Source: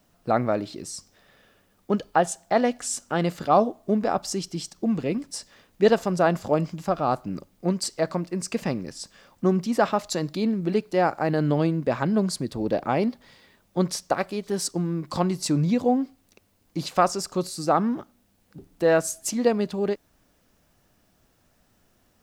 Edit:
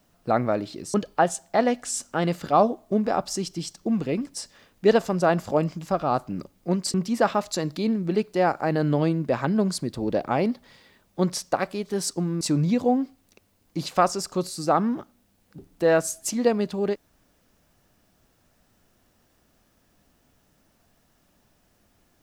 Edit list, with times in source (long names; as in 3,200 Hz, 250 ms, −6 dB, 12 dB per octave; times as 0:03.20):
0:00.94–0:01.91: remove
0:07.91–0:09.52: remove
0:14.99–0:15.41: remove